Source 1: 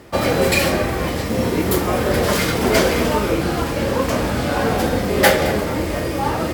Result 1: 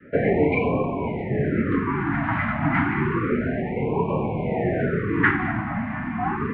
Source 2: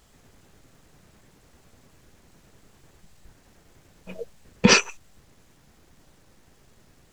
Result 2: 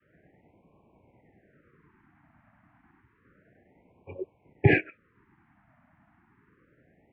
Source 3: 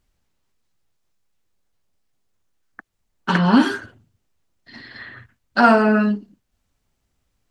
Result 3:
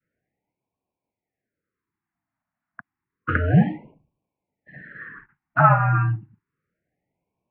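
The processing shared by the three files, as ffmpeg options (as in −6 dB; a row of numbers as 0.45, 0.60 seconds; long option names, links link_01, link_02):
-af "adynamicequalizer=threshold=0.0447:dfrequency=580:dqfactor=0.75:tfrequency=580:tqfactor=0.75:attack=5:release=100:ratio=0.375:range=2:mode=cutabove:tftype=bell,highpass=frequency=200:width_type=q:width=0.5412,highpass=frequency=200:width_type=q:width=1.307,lowpass=frequency=2200:width_type=q:width=0.5176,lowpass=frequency=2200:width_type=q:width=0.7071,lowpass=frequency=2200:width_type=q:width=1.932,afreqshift=-91,afftfilt=real='re*(1-between(b*sr/1024,420*pow(1600/420,0.5+0.5*sin(2*PI*0.3*pts/sr))/1.41,420*pow(1600/420,0.5+0.5*sin(2*PI*0.3*pts/sr))*1.41))':imag='im*(1-between(b*sr/1024,420*pow(1600/420,0.5+0.5*sin(2*PI*0.3*pts/sr))/1.41,420*pow(1600/420,0.5+0.5*sin(2*PI*0.3*pts/sr))*1.41))':win_size=1024:overlap=0.75"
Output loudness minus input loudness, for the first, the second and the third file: −5.0, −8.5, −3.0 LU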